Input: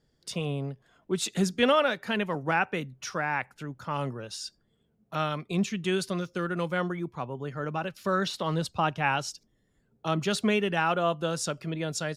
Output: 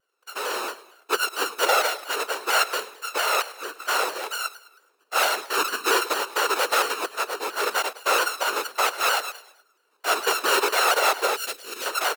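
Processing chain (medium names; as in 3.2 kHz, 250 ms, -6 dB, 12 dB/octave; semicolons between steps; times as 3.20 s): sorted samples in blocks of 32 samples; feedback delay 105 ms, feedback 44%, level -16 dB; whisper effect; 11.36–11.86 s: peaking EQ 940 Hz -14.5 dB 1.8 oct; in parallel at -5.5 dB: hard clipper -20.5 dBFS, distortion -14 dB; on the sum: Chebyshev high-pass 410 Hz, order 4; level rider gain up to 14 dB; vibrato with a chosen wave saw down 4.4 Hz, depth 100 cents; trim -6.5 dB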